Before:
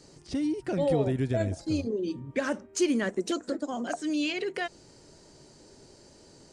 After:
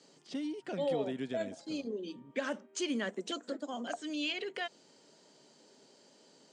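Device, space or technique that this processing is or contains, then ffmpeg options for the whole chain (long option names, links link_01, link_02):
television speaker: -af "highpass=frequency=200:width=0.5412,highpass=frequency=200:width=1.3066,equalizer=frequency=340:width_type=q:width=4:gain=-7,equalizer=frequency=3200:width_type=q:width=4:gain=7,equalizer=frequency=5600:width_type=q:width=4:gain=-3,lowpass=frequency=8100:width=0.5412,lowpass=frequency=8100:width=1.3066,volume=-5.5dB"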